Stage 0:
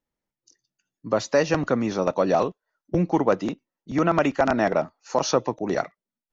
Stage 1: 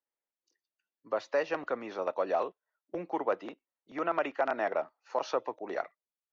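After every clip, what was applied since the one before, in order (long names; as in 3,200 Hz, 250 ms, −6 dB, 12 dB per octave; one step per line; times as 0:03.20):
three-way crossover with the lows and the highs turned down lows −23 dB, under 360 Hz, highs −21 dB, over 3,800 Hz
level −7.5 dB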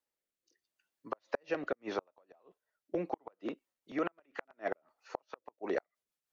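downward compressor 3 to 1, threshold −31 dBFS, peak gain reduction 6 dB
rotating-speaker cabinet horn 0.8 Hz, later 6.3 Hz, at 0:03.12
gate with flip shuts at −27 dBFS, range −40 dB
level +6.5 dB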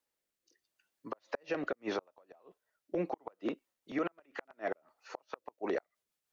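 brickwall limiter −27.5 dBFS, peak gain reduction 9.5 dB
level +3.5 dB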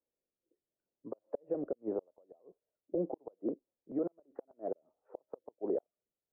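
transistor ladder low-pass 670 Hz, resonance 30%
level +5 dB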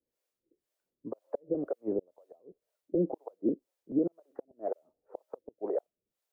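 two-band tremolo in antiphase 2 Hz, depth 100%, crossover 480 Hz
level +9 dB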